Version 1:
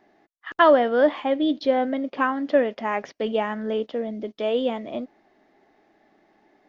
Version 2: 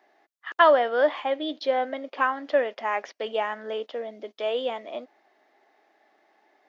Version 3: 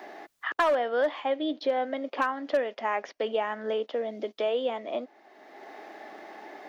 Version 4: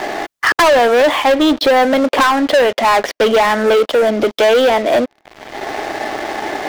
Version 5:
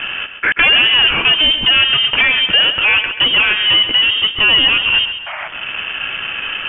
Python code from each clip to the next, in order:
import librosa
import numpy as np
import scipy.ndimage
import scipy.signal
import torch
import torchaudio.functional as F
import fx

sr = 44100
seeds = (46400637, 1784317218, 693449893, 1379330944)

y1 = scipy.signal.sosfilt(scipy.signal.butter(2, 540.0, 'highpass', fs=sr, output='sos'), x)
y2 = fx.low_shelf(y1, sr, hz=470.0, db=5.5)
y2 = np.clip(y2, -10.0 ** (-12.0 / 20.0), 10.0 ** (-12.0 / 20.0))
y2 = fx.band_squash(y2, sr, depth_pct=70)
y2 = F.gain(torch.from_numpy(y2), -3.5).numpy()
y3 = fx.leveller(y2, sr, passes=5)
y3 = F.gain(torch.from_numpy(y3), 5.0).numpy()
y4 = fx.freq_invert(y3, sr, carrier_hz=3400)
y4 = fx.spec_paint(y4, sr, seeds[0], shape='noise', start_s=5.26, length_s=0.22, low_hz=570.0, high_hz=2600.0, level_db=-25.0)
y4 = fx.echo_feedback(y4, sr, ms=133, feedback_pct=43, wet_db=-10)
y4 = F.gain(torch.from_numpy(y4), -1.0).numpy()